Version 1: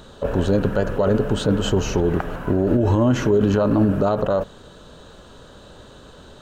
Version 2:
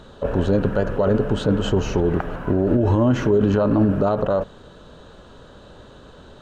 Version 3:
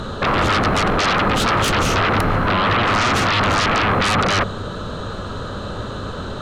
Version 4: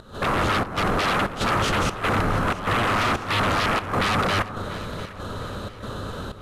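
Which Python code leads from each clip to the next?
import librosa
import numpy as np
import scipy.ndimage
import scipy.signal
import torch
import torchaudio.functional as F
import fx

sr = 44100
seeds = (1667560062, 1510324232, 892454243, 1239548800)

y1 = fx.lowpass(x, sr, hz=3300.0, slope=6)
y2 = fx.fold_sine(y1, sr, drive_db=18, ceiling_db=-9.0)
y2 = fx.graphic_eq_31(y2, sr, hz=(100, 200, 1250), db=(10, 4, 8))
y2 = y2 + 10.0 ** (-40.0 / 20.0) * np.sin(2.0 * np.pi * 4100.0 * np.arange(len(y2)) / sr)
y2 = y2 * 10.0 ** (-7.0 / 20.0)
y3 = fx.cvsd(y2, sr, bps=64000)
y3 = fx.volume_shaper(y3, sr, bpm=95, per_beat=1, depth_db=-18, release_ms=142.0, shape='slow start')
y3 = fx.echo_alternate(y3, sr, ms=349, hz=1500.0, feedback_pct=63, wet_db=-12.5)
y3 = y3 * 10.0 ** (-4.5 / 20.0)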